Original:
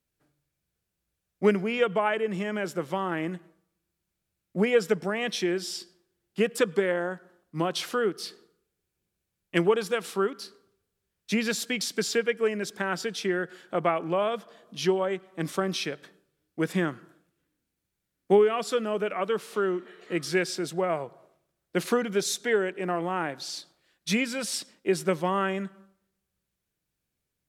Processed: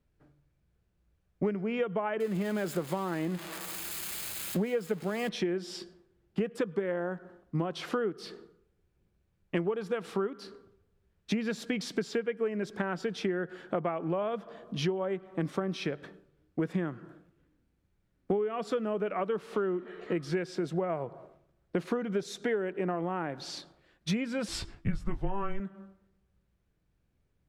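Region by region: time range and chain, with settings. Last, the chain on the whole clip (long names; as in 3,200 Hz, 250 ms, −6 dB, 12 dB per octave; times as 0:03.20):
0:02.20–0:05.29: spike at every zero crossing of −21 dBFS + notch filter 5,700 Hz, Q 7
0:24.48–0:25.60: double-tracking delay 17 ms −6 dB + frequency shifter −200 Hz
whole clip: low-pass filter 1,200 Hz 6 dB per octave; low-shelf EQ 85 Hz +10.5 dB; downward compressor 6 to 1, threshold −36 dBFS; level +7.5 dB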